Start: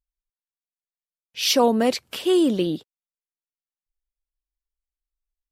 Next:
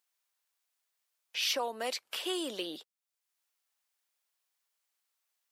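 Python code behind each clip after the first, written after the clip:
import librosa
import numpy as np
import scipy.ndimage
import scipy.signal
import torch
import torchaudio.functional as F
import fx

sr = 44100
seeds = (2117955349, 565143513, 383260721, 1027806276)

y = scipy.signal.sosfilt(scipy.signal.butter(2, 670.0, 'highpass', fs=sr, output='sos'), x)
y = fx.band_squash(y, sr, depth_pct=70)
y = y * librosa.db_to_amplitude(-7.5)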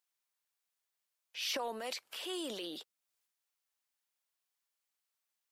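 y = fx.transient(x, sr, attack_db=-4, sustain_db=8)
y = y * librosa.db_to_amplitude(-5.0)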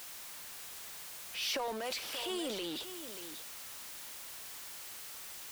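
y = x + 0.5 * 10.0 ** (-39.0 / 20.0) * np.sign(x)
y = y + 10.0 ** (-10.5 / 20.0) * np.pad(y, (int(583 * sr / 1000.0), 0))[:len(y)]
y = y * librosa.db_to_amplitude(-1.0)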